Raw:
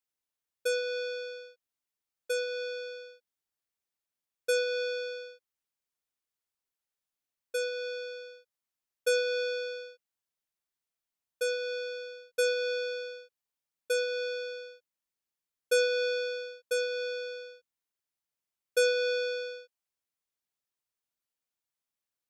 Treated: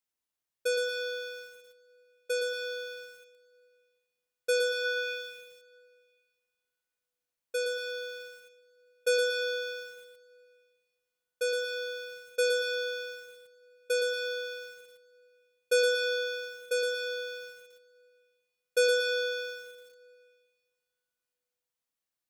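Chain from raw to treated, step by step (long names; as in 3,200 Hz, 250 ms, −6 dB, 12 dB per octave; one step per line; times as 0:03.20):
0:04.84–0:05.29: parametric band 1,500 Hz → 3,400 Hz +10.5 dB 0.52 octaves
dense smooth reverb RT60 2.3 s, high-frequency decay 1×, DRR 13 dB
feedback echo at a low word length 116 ms, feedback 35%, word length 9 bits, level −5 dB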